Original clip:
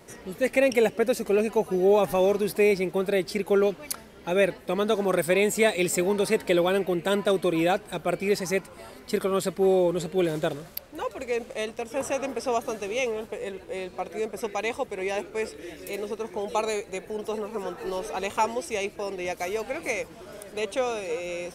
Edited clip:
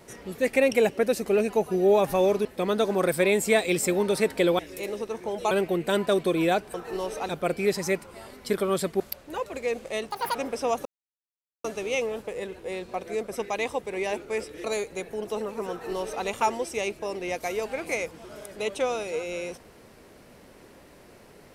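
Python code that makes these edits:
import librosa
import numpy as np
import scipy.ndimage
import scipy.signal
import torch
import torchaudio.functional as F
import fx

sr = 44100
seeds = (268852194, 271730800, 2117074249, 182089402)

y = fx.edit(x, sr, fx.cut(start_s=2.45, length_s=2.1),
    fx.cut(start_s=9.63, length_s=1.02),
    fx.speed_span(start_s=11.75, length_s=0.44, speed=1.74),
    fx.insert_silence(at_s=12.69, length_s=0.79),
    fx.move(start_s=15.69, length_s=0.92, to_s=6.69),
    fx.duplicate(start_s=17.67, length_s=0.55, to_s=7.92), tone=tone)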